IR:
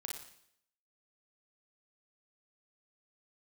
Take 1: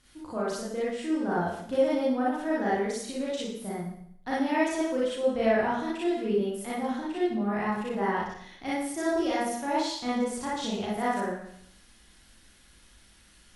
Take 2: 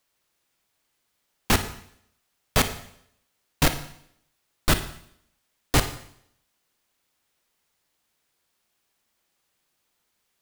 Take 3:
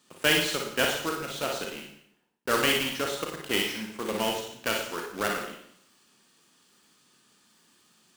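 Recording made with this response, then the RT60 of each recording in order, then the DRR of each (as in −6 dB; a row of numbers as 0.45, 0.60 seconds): 3; 0.70, 0.70, 0.70 seconds; −8.0, 9.0, 0.0 decibels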